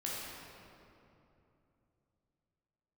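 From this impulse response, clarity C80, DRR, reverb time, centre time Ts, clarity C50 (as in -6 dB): -1.0 dB, -6.0 dB, 2.9 s, 0.158 s, -3.0 dB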